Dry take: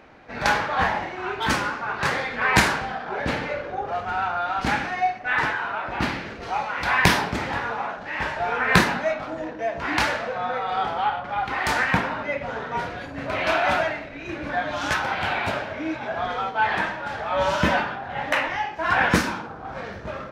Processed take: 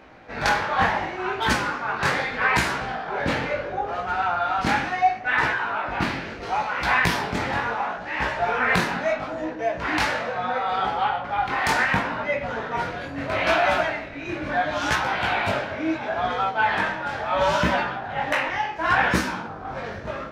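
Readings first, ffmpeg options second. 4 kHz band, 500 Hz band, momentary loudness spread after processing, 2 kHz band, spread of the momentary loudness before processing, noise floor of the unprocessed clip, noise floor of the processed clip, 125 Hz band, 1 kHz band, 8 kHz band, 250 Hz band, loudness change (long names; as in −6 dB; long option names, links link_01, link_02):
−0.5 dB, +1.0 dB, 8 LU, +0.5 dB, 10 LU, −37 dBFS, −35 dBFS, −1.0 dB, +1.0 dB, −2.0 dB, −0.5 dB, +0.5 dB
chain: -af "flanger=delay=15.5:depth=7.1:speed=0.73,alimiter=limit=-14dB:level=0:latency=1:release=308,volume=4.5dB"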